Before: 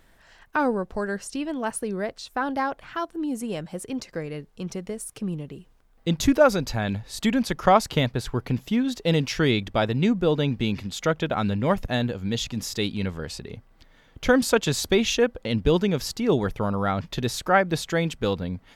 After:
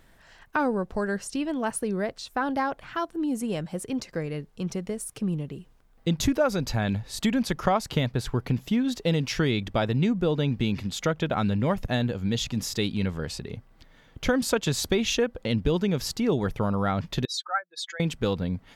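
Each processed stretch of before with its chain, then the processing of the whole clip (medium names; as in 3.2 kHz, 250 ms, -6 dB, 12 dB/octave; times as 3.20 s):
17.25–18.00 s: spectral contrast enhancement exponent 2.3 + high-pass 1 kHz 24 dB/octave + comb 5.9 ms, depth 39%
whole clip: peaking EQ 140 Hz +3 dB 1.4 oct; compression 3:1, threshold -21 dBFS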